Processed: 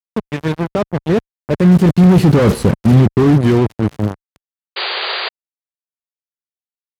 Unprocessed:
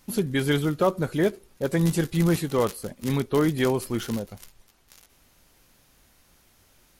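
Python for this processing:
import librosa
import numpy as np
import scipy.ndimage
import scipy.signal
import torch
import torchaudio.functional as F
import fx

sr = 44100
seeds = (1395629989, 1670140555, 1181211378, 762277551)

y = fx.doppler_pass(x, sr, speed_mps=26, closest_m=3.7, pass_at_s=2.51)
y = fx.fuzz(y, sr, gain_db=49.0, gate_db=-45.0)
y = scipy.signal.sosfilt(scipy.signal.butter(2, 99.0, 'highpass', fs=sr, output='sos'), y)
y = fx.riaa(y, sr, side='playback')
y = fx.spec_paint(y, sr, seeds[0], shape='noise', start_s=4.76, length_s=0.53, low_hz=350.0, high_hz=4800.0, level_db=-21.0)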